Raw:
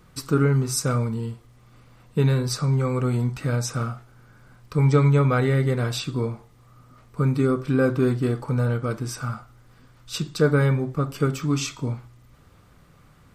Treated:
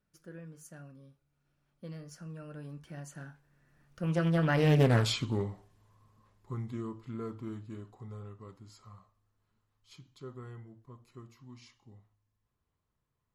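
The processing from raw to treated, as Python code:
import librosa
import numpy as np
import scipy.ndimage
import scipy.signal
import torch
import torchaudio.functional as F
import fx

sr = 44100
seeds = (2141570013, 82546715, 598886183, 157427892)

y = fx.doppler_pass(x, sr, speed_mps=54, closest_m=12.0, pass_at_s=4.91)
y = fx.doppler_dist(y, sr, depth_ms=0.4)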